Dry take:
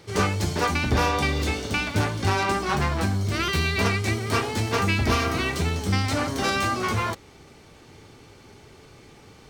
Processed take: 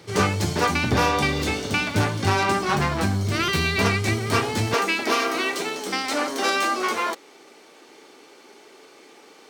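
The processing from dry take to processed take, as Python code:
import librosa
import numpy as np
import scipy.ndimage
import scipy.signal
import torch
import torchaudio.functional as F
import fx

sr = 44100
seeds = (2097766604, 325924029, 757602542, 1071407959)

y = fx.highpass(x, sr, hz=fx.steps((0.0, 89.0), (4.74, 290.0)), slope=24)
y = y * 10.0 ** (2.5 / 20.0)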